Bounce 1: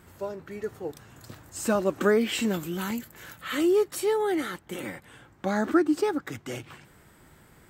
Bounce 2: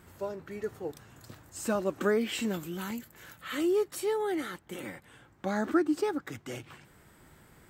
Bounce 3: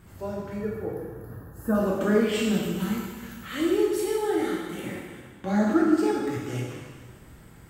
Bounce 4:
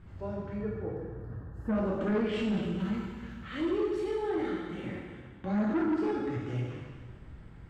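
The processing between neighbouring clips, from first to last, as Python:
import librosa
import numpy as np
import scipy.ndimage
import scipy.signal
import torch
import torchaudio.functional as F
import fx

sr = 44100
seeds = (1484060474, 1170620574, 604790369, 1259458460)

y1 = fx.rider(x, sr, range_db=4, speed_s=2.0)
y1 = y1 * librosa.db_to_amplitude(-6.0)
y2 = fx.spec_box(y1, sr, start_s=0.57, length_s=1.18, low_hz=1900.0, high_hz=9800.0, gain_db=-20)
y2 = fx.low_shelf(y2, sr, hz=180.0, db=11.0)
y2 = fx.rev_plate(y2, sr, seeds[0], rt60_s=1.5, hf_ratio=1.0, predelay_ms=0, drr_db=-4.5)
y2 = y2 * librosa.db_to_amplitude(-2.0)
y3 = scipy.signal.sosfilt(scipy.signal.butter(2, 3400.0, 'lowpass', fs=sr, output='sos'), y2)
y3 = fx.low_shelf(y3, sr, hz=110.0, db=11.0)
y3 = 10.0 ** (-18.5 / 20.0) * np.tanh(y3 / 10.0 ** (-18.5 / 20.0))
y3 = y3 * librosa.db_to_amplitude(-5.0)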